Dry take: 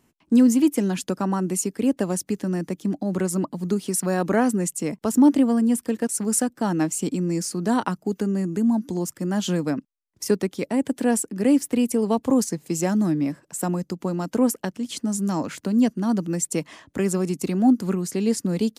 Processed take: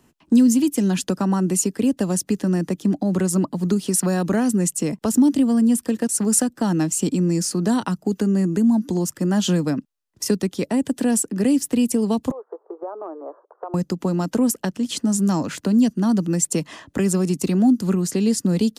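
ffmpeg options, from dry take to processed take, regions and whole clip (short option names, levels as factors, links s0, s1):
-filter_complex "[0:a]asettb=1/sr,asplit=3[s0][s1][s2];[s0]atrim=end=12.314[s3];[s1]atrim=start=12.31:end=13.74,asetpts=PTS-STARTPTS,afade=t=in:d=0.004:c=qsin,afade=t=out:st=1.426:d=0.004:c=qsin,asuperpass=centerf=710:order=12:qfactor=0.8,acompressor=threshold=0.0224:ratio=5:attack=3.2:release=140:knee=1:detection=peak[s4];[s2]atrim=start=13.736[s5];[s3][s4]acrossfade=d=0.004:c1=hsin:c2=qsin[s6];[s6][s5]acrossfade=d=0.004:c1=qsin:c2=hsin,highshelf=f=10000:g=-4,bandreject=f=2200:w=13,acrossover=split=230|3000[s7][s8][s9];[s8]acompressor=threshold=0.0355:ratio=6[s10];[s7][s10][s9]amix=inputs=3:normalize=0,volume=2"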